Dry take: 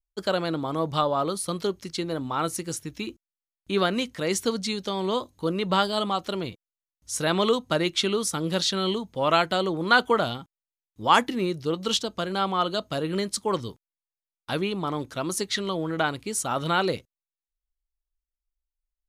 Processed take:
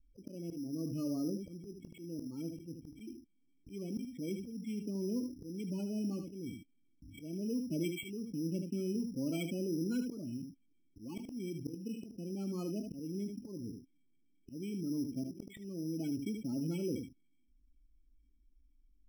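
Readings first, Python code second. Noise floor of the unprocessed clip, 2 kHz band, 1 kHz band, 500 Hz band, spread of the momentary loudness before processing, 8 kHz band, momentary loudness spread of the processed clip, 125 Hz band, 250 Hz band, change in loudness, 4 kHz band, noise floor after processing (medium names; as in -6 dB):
under -85 dBFS, -26.0 dB, under -35 dB, -17.0 dB, 10 LU, -19.5 dB, 13 LU, -9.0 dB, -6.5 dB, -13.5 dB, -25.5 dB, -71 dBFS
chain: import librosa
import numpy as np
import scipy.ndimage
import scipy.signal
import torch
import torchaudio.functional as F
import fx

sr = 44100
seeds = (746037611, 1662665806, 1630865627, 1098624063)

p1 = fx.env_lowpass(x, sr, base_hz=2000.0, full_db=-21.0)
p2 = fx.formant_cascade(p1, sr, vowel='i')
p3 = fx.notch(p2, sr, hz=750.0, q=13.0)
p4 = fx.spec_topn(p3, sr, count=16)
p5 = fx.auto_swell(p4, sr, attack_ms=548.0)
p6 = p5 + fx.room_early_taps(p5, sr, ms=(24, 76), db=(-16.0, -11.0), dry=0)
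p7 = np.repeat(scipy.signal.resample_poly(p6, 1, 8), 8)[:len(p6)]
p8 = fx.env_flatten(p7, sr, amount_pct=50)
y = p8 * 10.0 ** (-1.0 / 20.0)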